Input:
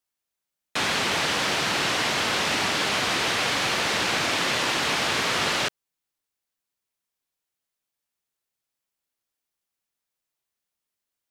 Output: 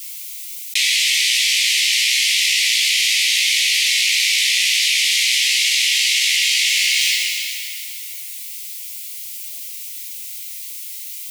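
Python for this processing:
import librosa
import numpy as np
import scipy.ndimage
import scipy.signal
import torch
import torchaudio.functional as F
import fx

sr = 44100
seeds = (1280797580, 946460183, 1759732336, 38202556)

p1 = scipy.signal.sosfilt(scipy.signal.butter(16, 2000.0, 'highpass', fs=sr, output='sos'), x)
p2 = fx.high_shelf(p1, sr, hz=7400.0, db=8.0)
p3 = fx.doubler(p2, sr, ms=16.0, db=-4)
p4 = p3 + fx.echo_feedback(p3, sr, ms=500, feedback_pct=17, wet_db=-11.0, dry=0)
p5 = fx.rev_plate(p4, sr, seeds[0], rt60_s=2.7, hf_ratio=0.9, predelay_ms=75, drr_db=10.5)
p6 = fx.env_flatten(p5, sr, amount_pct=100)
y = F.gain(torch.from_numpy(p6), 6.0).numpy()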